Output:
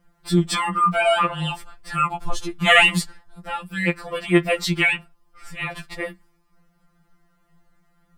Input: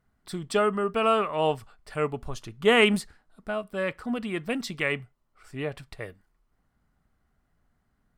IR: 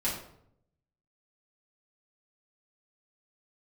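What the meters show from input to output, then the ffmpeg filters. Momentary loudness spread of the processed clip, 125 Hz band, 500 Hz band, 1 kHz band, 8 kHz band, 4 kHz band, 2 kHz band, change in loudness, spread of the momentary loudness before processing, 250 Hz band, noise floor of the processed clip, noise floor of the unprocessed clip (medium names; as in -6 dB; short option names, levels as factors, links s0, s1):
17 LU, +10.0 dB, +0.5 dB, +7.5 dB, +10.0 dB, +8.5 dB, +9.5 dB, +6.0 dB, 19 LU, +5.5 dB, -64 dBFS, -73 dBFS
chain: -af "apsyclip=4.73,afftfilt=real='re*2.83*eq(mod(b,8),0)':imag='im*2.83*eq(mod(b,8),0)':win_size=2048:overlap=0.75,volume=0.891"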